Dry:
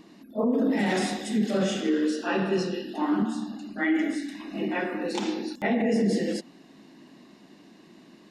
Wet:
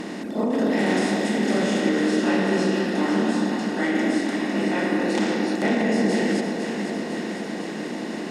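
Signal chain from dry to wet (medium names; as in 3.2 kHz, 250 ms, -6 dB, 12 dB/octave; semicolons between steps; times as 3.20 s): spectral levelling over time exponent 0.4; echo whose repeats swap between lows and highs 251 ms, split 890 Hz, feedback 83%, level -6 dB; trim -3 dB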